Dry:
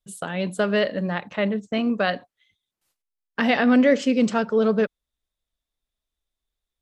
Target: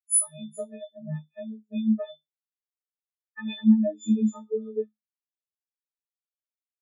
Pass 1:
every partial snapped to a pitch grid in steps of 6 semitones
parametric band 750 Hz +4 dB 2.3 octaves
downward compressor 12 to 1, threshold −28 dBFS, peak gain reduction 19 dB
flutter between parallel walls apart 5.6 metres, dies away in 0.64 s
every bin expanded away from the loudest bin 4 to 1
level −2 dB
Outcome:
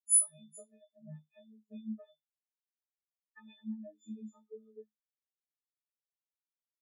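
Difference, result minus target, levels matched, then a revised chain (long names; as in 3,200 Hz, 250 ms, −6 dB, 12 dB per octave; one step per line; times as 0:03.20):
downward compressor: peak gain reduction +10.5 dB
every partial snapped to a pitch grid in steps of 6 semitones
parametric band 750 Hz +4 dB 2.3 octaves
downward compressor 12 to 1, threshold −16.5 dBFS, peak gain reduction 8.5 dB
flutter between parallel walls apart 5.6 metres, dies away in 0.64 s
every bin expanded away from the loudest bin 4 to 1
level −2 dB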